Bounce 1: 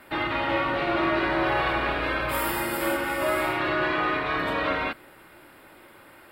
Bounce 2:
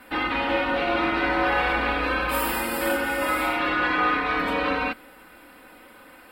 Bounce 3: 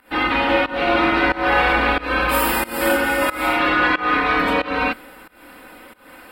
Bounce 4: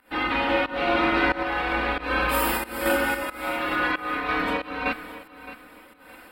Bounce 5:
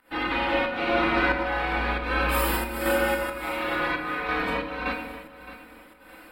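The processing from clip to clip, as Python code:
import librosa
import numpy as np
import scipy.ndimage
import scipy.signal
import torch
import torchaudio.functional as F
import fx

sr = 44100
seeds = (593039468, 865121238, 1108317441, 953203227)

y1 = x + 0.84 * np.pad(x, (int(4.0 * sr / 1000.0), 0))[:len(x)]
y2 = fx.volume_shaper(y1, sr, bpm=91, per_beat=1, depth_db=-21, release_ms=267.0, shape='fast start')
y2 = y2 * librosa.db_to_amplitude(6.5)
y3 = fx.tremolo_random(y2, sr, seeds[0], hz=3.5, depth_pct=55)
y3 = fx.echo_feedback(y3, sr, ms=616, feedback_pct=27, wet_db=-14.5)
y3 = y3 * librosa.db_to_amplitude(-4.0)
y4 = fx.room_shoebox(y3, sr, seeds[1], volume_m3=330.0, walls='mixed', distance_m=0.72)
y4 = y4 * librosa.db_to_amplitude(-2.5)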